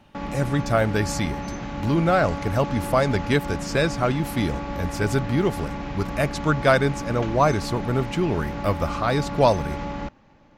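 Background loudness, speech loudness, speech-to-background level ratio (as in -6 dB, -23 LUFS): -31.5 LUFS, -23.5 LUFS, 8.0 dB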